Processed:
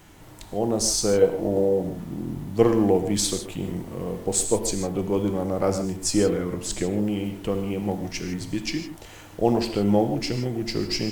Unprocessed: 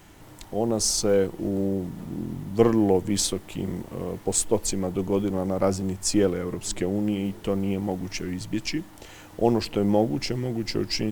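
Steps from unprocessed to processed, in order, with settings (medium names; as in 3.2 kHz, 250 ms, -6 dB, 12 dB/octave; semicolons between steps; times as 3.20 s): 1.22–1.82 s: high-order bell 630 Hz +10 dB 1.2 oct; gated-style reverb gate 180 ms flat, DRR 6.5 dB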